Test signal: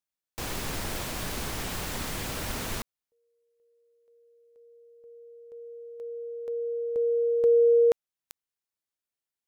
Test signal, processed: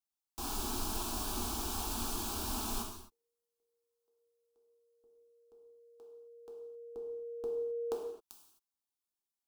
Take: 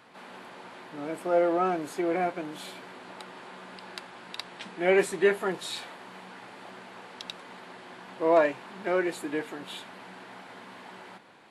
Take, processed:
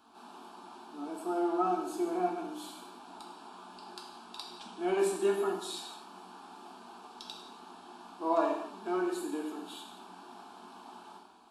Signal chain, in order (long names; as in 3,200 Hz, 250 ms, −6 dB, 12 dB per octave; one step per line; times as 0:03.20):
phaser with its sweep stopped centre 530 Hz, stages 6
reverb whose tail is shaped and stops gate 290 ms falling, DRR −0.5 dB
level −4.5 dB